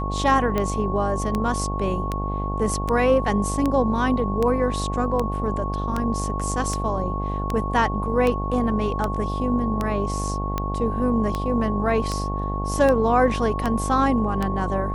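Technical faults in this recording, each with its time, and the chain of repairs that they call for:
buzz 50 Hz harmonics 18 -27 dBFS
tick 78 rpm -11 dBFS
tone 1100 Hz -29 dBFS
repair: de-click; notch 1100 Hz, Q 30; de-hum 50 Hz, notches 18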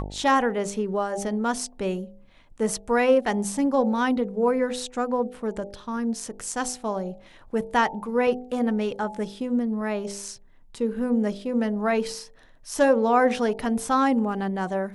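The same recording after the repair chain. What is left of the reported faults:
none

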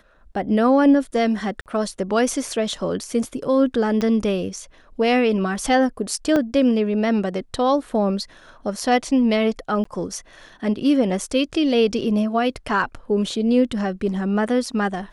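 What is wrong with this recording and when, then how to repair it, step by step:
1.61–1.66 gap 48 ms
4.01 pop -13 dBFS
6.36 gap 2.2 ms
9.84–9.85 gap 14 ms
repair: de-click; interpolate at 1.61, 48 ms; interpolate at 6.36, 2.2 ms; interpolate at 9.84, 14 ms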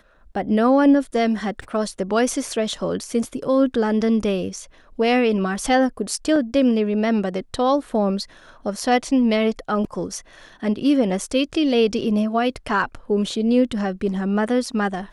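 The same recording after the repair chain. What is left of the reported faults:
4.01 pop

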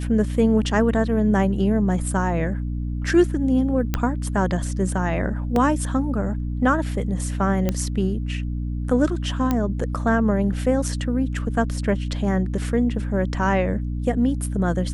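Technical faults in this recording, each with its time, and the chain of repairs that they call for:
hum 60 Hz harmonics 5 -26 dBFS
3.94 pop -8 dBFS
5.56 gap 2.2 ms
7.69 pop -9 dBFS
9.51 pop -9 dBFS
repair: de-click; de-hum 60 Hz, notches 5; interpolate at 5.56, 2.2 ms

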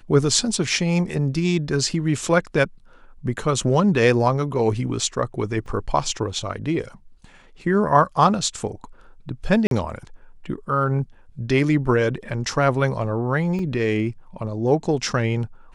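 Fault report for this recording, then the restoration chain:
5.66 gap 3.3 ms
9.67–9.71 gap 42 ms
13.59 gap 2.3 ms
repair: interpolate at 5.66, 3.3 ms; interpolate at 9.67, 42 ms; interpolate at 13.59, 2.3 ms

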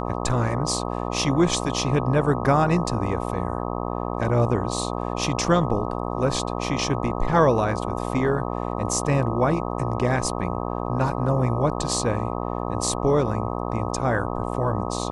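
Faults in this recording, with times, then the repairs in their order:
buzz 60 Hz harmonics 21 -28 dBFS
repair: de-hum 60 Hz, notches 21

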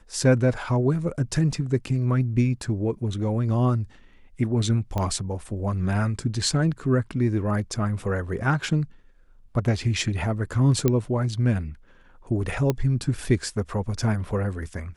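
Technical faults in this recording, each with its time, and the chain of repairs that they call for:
4.98 pop -14 dBFS
10.88 pop -8 dBFS
12.7 pop -10 dBFS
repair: de-click

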